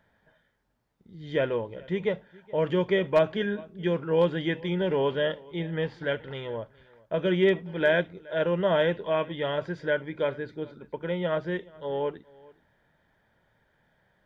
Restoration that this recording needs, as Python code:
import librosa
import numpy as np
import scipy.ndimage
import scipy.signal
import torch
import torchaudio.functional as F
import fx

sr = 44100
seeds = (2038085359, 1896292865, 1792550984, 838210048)

y = fx.fix_declip(x, sr, threshold_db=-13.0)
y = fx.fix_echo_inverse(y, sr, delay_ms=422, level_db=-23.5)